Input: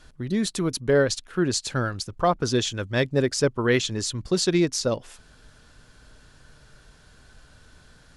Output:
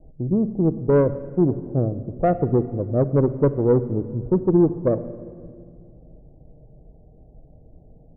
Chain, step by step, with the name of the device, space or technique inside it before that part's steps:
Butterworth low-pass 760 Hz 72 dB per octave
tube preamp driven hard (tube saturation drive 15 dB, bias 0.3; high-shelf EQ 3,900 Hz −7 dB)
rectangular room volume 3,800 cubic metres, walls mixed, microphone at 0.6 metres
level +6 dB

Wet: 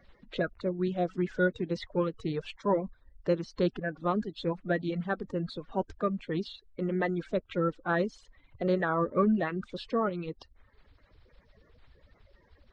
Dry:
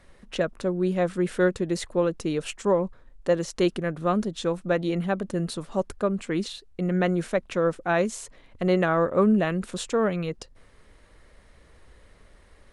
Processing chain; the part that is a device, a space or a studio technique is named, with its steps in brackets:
reverb reduction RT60 0.69 s
clip after many re-uploads (low-pass filter 4,600 Hz 24 dB per octave; spectral magnitudes quantised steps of 30 dB)
parametric band 2,800 Hz −3 dB 0.4 octaves
level −4 dB

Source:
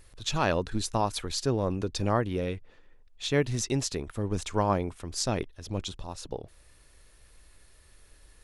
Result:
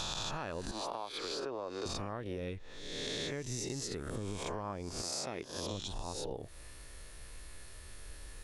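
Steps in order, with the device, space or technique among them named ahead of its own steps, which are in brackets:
peak hold with a rise ahead of every peak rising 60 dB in 0.95 s
0:00.71–0:01.86: three-way crossover with the lows and the highs turned down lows −21 dB, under 330 Hz, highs −15 dB, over 4,000 Hz
0:03.63–0:04.21: notch filter 2,400 Hz, Q 10
0:05.01–0:05.71: high-pass filter 540 Hz → 150 Hz 6 dB per octave
serial compression, leveller first (downward compressor 2.5 to 1, threshold −29 dBFS, peak gain reduction 7.5 dB; downward compressor 6 to 1, threshold −41 dBFS, peak gain reduction 15 dB)
level +4.5 dB

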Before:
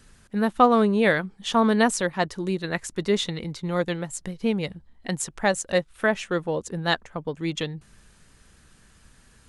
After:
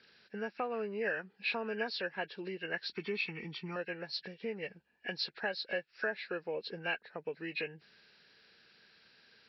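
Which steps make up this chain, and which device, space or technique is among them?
hearing aid with frequency lowering (hearing-aid frequency compression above 1,400 Hz 1.5 to 1; downward compressor 3 to 1, threshold −29 dBFS, peak gain reduction 13.5 dB; loudspeaker in its box 270–6,800 Hz, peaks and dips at 280 Hz −5 dB, 440 Hz +5 dB, 1,100 Hz −7 dB, 1,700 Hz +9 dB, 2,600 Hz +7 dB, 4,100 Hz +7 dB)
0:02.92–0:03.76: comb filter 0.9 ms, depth 94%
level −7.5 dB

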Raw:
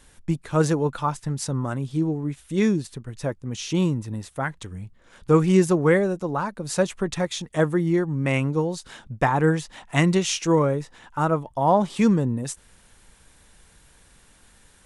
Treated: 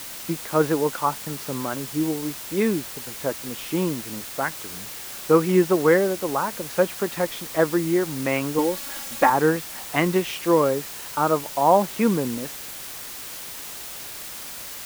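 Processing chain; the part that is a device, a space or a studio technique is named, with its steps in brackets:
wax cylinder (band-pass filter 270–2,300 Hz; tape wow and flutter; white noise bed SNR 12 dB)
0:08.58–0:09.30: comb filter 3.6 ms, depth 80%
level +2.5 dB

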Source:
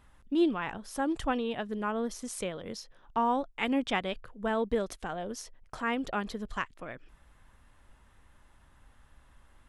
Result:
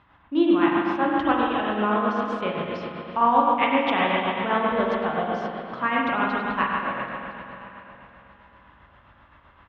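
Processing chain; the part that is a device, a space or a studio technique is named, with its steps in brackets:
combo amplifier with spring reverb and tremolo (spring reverb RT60 2.9 s, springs 38/45 ms, chirp 65 ms, DRR −4.5 dB; amplitude tremolo 7.7 Hz, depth 44%; loudspeaker in its box 97–3,600 Hz, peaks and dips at 230 Hz −5 dB, 450 Hz −5 dB, 1,100 Hz +5 dB)
repeating echo 1,010 ms, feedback 18%, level −21 dB
level +6.5 dB

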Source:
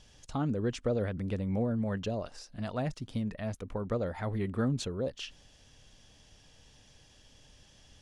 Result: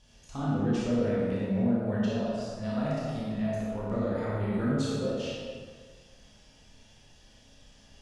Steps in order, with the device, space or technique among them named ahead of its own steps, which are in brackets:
four-comb reverb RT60 0.61 s, combs from 26 ms, DRR −1 dB
stairwell (convolution reverb RT60 1.8 s, pre-delay 9 ms, DRR −4.5 dB)
level −6.5 dB

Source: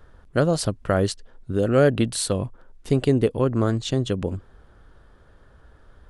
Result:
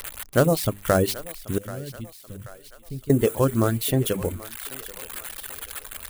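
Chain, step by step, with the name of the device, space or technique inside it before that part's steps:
mains-hum notches 50/100/150/200/250/300/350/400/450 Hz
budget class-D amplifier (gap after every zero crossing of 0.098 ms; spike at every zero crossing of −17 dBFS)
reverb reduction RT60 1 s
0:01.58–0:03.10: guitar amp tone stack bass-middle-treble 10-0-1
feedback echo with a high-pass in the loop 783 ms, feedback 59%, high-pass 580 Hz, level −15 dB
level +2.5 dB

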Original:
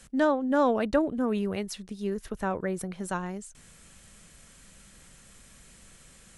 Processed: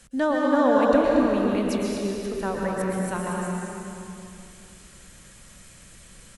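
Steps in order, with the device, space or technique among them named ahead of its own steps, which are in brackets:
cave (single-tap delay 232 ms −8.5 dB; convolution reverb RT60 2.8 s, pre-delay 108 ms, DRR −2.5 dB)

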